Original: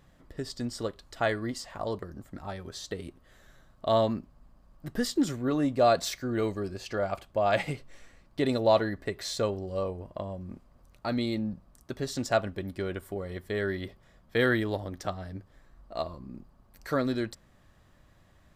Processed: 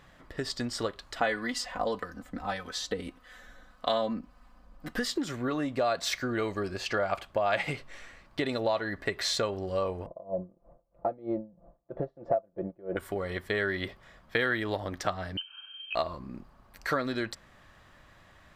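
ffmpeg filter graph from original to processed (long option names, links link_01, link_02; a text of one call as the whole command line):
ffmpeg -i in.wav -filter_complex "[0:a]asettb=1/sr,asplit=3[link_01][link_02][link_03];[link_01]atrim=end=1.204[link_04];[link_02]atrim=start=1.2:end=4.99,asetpts=PTS-STARTPTS,afade=type=in:duration=0.004:curve=qsin,afade=type=out:start_time=3.786:duration=0.004:curve=qsin,aecho=1:1:4:0.78,atrim=end_sample=167139,acrossover=split=760[link_05][link_06];[link_05]aeval=exprs='val(0)*(1-0.5/2+0.5/2*cos(2*PI*1.7*n/s))':channel_layout=same[link_07];[link_06]aeval=exprs='val(0)*(1-0.5/2-0.5/2*cos(2*PI*1.7*n/s))':channel_layout=same[link_08];[link_07][link_08]amix=inputs=2:normalize=0[link_09];[link_03]atrim=start=4.986[link_10];[link_04][link_09]acrossfade=duration=0.004:curve1=hsin:curve2=qsin[link_11];[link_11][link_10]acrossfade=duration=0.004:curve1=qsin:curve2=hsin,asettb=1/sr,asplit=3[link_12][link_13][link_14];[link_12]atrim=end=10.064[link_15];[link_13]atrim=start=10.06:end=12.97,asetpts=PTS-STARTPTS,afade=type=in:duration=0.004:curve=qsin,afade=type=out:start_time=2.906:duration=0.004:curve=qsin,lowpass=frequency=600:width_type=q:width=3.5,aecho=1:1:5.9:0.66,atrim=end_sample=128331,aeval=exprs='val(0)*pow(10,-26*(0.5-0.5*cos(2*PI*3.1*n/s))/20)':channel_layout=same[link_16];[link_14]atrim=start=12.966[link_17];[link_15][link_16]acrossfade=duration=0.004:curve1=hsin:curve2=qsin[link_18];[link_18][link_17]acrossfade=duration=0.004:curve1=qsin:curve2=hsin,asettb=1/sr,asplit=3[link_19][link_20][link_21];[link_19]atrim=end=15.374[link_22];[link_20]atrim=start=15.37:end=15.95,asetpts=PTS-STARTPTS,afade=type=in:duration=0.004:curve=qsin,afade=type=out:start_time=0.576:duration=0.004:curve=qsin,lowpass=frequency=2700:width_type=q:width=0.5098,lowpass=frequency=2700:width_type=q:width=0.6013,lowpass=frequency=2700:width_type=q:width=0.9,lowpass=frequency=2700:width_type=q:width=2.563,afreqshift=-3200,asuperstop=centerf=2000:order=8:qfactor=3.8[link_23];[link_21]atrim=start=15.946[link_24];[link_22][link_23]acrossfade=duration=0.004:curve1=hsin:curve2=qsin[link_25];[link_25][link_24]acrossfade=duration=0.004:curve1=qsin:curve2=hsin,acompressor=threshold=-30dB:ratio=10,equalizer=frequency=1800:width=0.35:gain=10" out.wav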